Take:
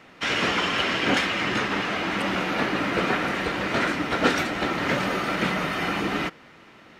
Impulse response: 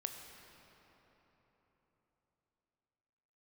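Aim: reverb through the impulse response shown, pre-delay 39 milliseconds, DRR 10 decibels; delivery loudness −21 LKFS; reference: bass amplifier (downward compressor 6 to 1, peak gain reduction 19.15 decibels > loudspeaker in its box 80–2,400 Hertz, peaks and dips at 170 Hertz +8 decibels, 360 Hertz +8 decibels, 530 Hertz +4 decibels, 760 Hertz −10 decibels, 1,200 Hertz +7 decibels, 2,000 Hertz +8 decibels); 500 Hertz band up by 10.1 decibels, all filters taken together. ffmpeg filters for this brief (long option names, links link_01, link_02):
-filter_complex "[0:a]equalizer=frequency=500:width_type=o:gain=8,asplit=2[link_01][link_02];[1:a]atrim=start_sample=2205,adelay=39[link_03];[link_02][link_03]afir=irnorm=-1:irlink=0,volume=-9dB[link_04];[link_01][link_04]amix=inputs=2:normalize=0,acompressor=threshold=-32dB:ratio=6,highpass=frequency=80:width=0.5412,highpass=frequency=80:width=1.3066,equalizer=frequency=170:width_type=q:width=4:gain=8,equalizer=frequency=360:width_type=q:width=4:gain=8,equalizer=frequency=530:width_type=q:width=4:gain=4,equalizer=frequency=760:width_type=q:width=4:gain=-10,equalizer=frequency=1200:width_type=q:width=4:gain=7,equalizer=frequency=2000:width_type=q:width=4:gain=8,lowpass=frequency=2400:width=0.5412,lowpass=frequency=2400:width=1.3066,volume=10dB"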